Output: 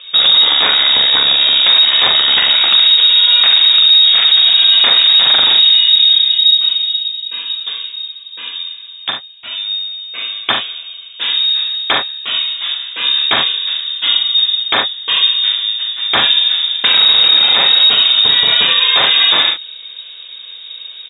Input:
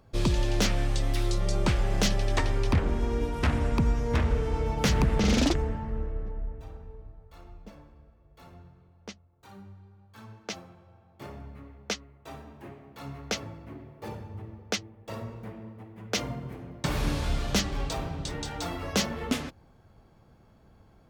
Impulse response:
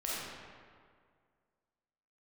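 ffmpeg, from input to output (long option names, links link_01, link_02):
-filter_complex "[0:a]asoftclip=type=hard:threshold=-27dB,equalizer=frequency=490:width=0.32:gain=-4.5,asplit=2[link_01][link_02];[link_02]aecho=0:1:42|70:0.562|0.335[link_03];[link_01][link_03]amix=inputs=2:normalize=0,lowpass=frequency=3200:width_type=q:width=0.5098,lowpass=frequency=3200:width_type=q:width=0.6013,lowpass=frequency=3200:width_type=q:width=0.9,lowpass=frequency=3200:width_type=q:width=2.563,afreqshift=-3800,highpass=86,alimiter=level_in=27.5dB:limit=-1dB:release=50:level=0:latency=1,volume=-1dB"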